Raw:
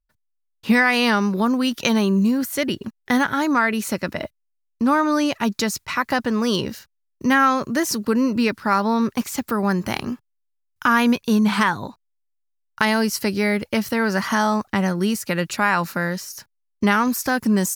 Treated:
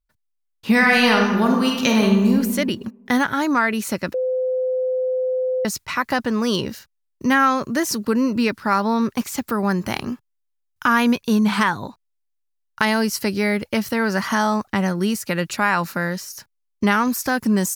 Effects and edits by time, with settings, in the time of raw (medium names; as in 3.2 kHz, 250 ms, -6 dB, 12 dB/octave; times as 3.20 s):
0.71–2.33 s: reverb throw, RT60 1.2 s, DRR 0.5 dB
4.14–5.65 s: bleep 512 Hz -18.5 dBFS